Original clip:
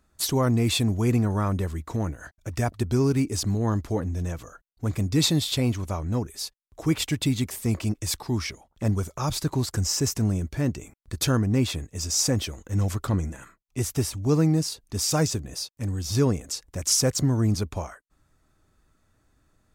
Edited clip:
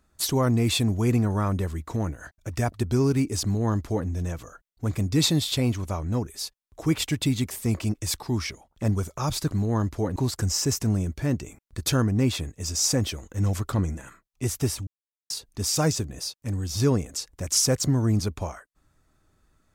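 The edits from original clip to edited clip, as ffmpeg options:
ffmpeg -i in.wav -filter_complex "[0:a]asplit=5[link_01][link_02][link_03][link_04][link_05];[link_01]atrim=end=9.512[link_06];[link_02]atrim=start=3.428:end=4.082[link_07];[link_03]atrim=start=9.508:end=14.22,asetpts=PTS-STARTPTS,afade=type=out:start_time=4.708:duration=0.004:curve=hsin[link_08];[link_04]atrim=start=14.22:end=14.65,asetpts=PTS-STARTPTS,volume=0[link_09];[link_05]atrim=start=14.65,asetpts=PTS-STARTPTS,afade=type=in:duration=0.004:curve=hsin[link_10];[link_06][link_07]acrossfade=duration=0.004:curve1=hsin:curve2=hsin[link_11];[link_08][link_09][link_10]concat=n=3:v=0:a=1[link_12];[link_11][link_12]acrossfade=duration=0.004:curve1=hsin:curve2=hsin" out.wav

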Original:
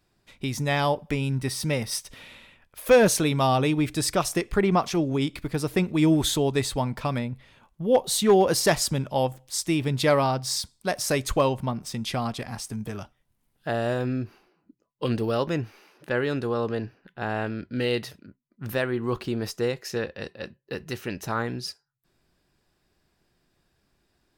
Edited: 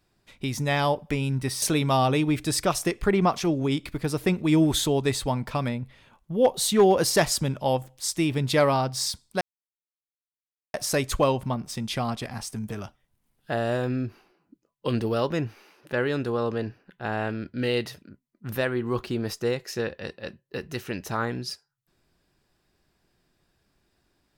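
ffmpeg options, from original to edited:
ffmpeg -i in.wav -filter_complex "[0:a]asplit=3[link_01][link_02][link_03];[link_01]atrim=end=1.622[link_04];[link_02]atrim=start=3.118:end=10.91,asetpts=PTS-STARTPTS,afade=type=out:start_time=7.788:duration=0.004:curve=hsin,apad=pad_dur=1.33[link_05];[link_03]atrim=start=10.91,asetpts=PTS-STARTPTS,afade=type=in:duration=0.004:curve=hsin[link_06];[link_05][link_06]concat=n=2:v=0:a=1[link_07];[link_04][link_07]acrossfade=duration=0.004:curve1=hsin:curve2=hsin" out.wav

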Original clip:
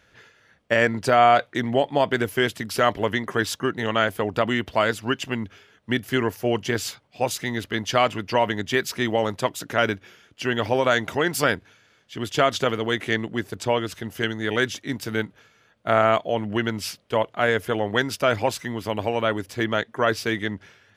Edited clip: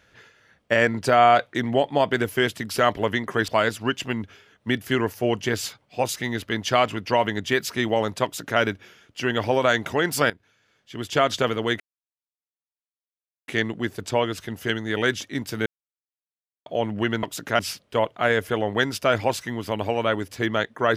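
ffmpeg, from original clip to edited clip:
ffmpeg -i in.wav -filter_complex "[0:a]asplit=8[link_01][link_02][link_03][link_04][link_05][link_06][link_07][link_08];[link_01]atrim=end=3.482[link_09];[link_02]atrim=start=4.698:end=11.52,asetpts=PTS-STARTPTS,afade=type=out:start_time=6.818:duration=0.004:curve=hsin:silence=0.177828[link_10];[link_03]atrim=start=11.52:end=13.02,asetpts=PTS-STARTPTS,afade=type=in:duration=0.99:silence=0.177828,afade=type=out:start_time=1.496:duration=0.004:curve=hsin,apad=pad_dur=1.68[link_11];[link_04]atrim=start=13.02:end=15.2,asetpts=PTS-STARTPTS,afade=type=in:duration=0.004:curve=hsin,afade=type=out:start_time=2.176:duration=0.004:curve=hsin[link_12];[link_05]atrim=start=15.2:end=16.2,asetpts=PTS-STARTPTS,volume=0[link_13];[link_06]atrim=start=16.2:end=16.772,asetpts=PTS-STARTPTS,afade=type=in:duration=0.004:curve=hsin[link_14];[link_07]atrim=start=9.458:end=9.822[link_15];[link_08]atrim=start=16.768[link_16];[link_10][link_11][link_12][link_13][link_14]concat=n=5:v=0:a=1[link_17];[link_09][link_17]acrossfade=duration=0.004:curve1=hsin:curve2=hsin[link_18];[link_18][link_15]acrossfade=duration=0.004:curve1=hsin:curve2=hsin[link_19];[link_19][link_16]acrossfade=duration=0.004:curve1=hsin:curve2=hsin" out.wav

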